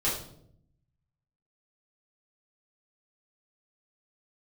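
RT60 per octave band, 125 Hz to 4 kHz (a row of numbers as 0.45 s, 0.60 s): 1.4 s, 1.1 s, 0.80 s, 0.55 s, 0.45 s, 0.50 s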